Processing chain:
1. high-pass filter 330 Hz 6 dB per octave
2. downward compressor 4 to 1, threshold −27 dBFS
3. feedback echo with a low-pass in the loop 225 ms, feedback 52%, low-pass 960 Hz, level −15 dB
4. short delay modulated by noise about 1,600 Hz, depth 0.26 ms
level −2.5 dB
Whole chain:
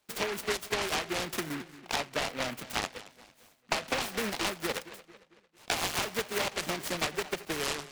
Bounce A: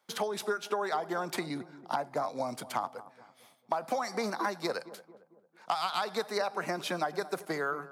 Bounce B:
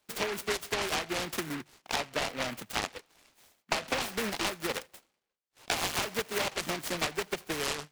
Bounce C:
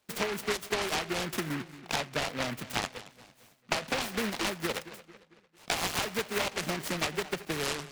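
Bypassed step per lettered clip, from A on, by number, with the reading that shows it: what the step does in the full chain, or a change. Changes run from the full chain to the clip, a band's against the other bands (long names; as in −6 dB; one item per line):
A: 4, 8 kHz band −7.5 dB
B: 3, change in momentary loudness spread −3 LU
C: 1, 125 Hz band +4.0 dB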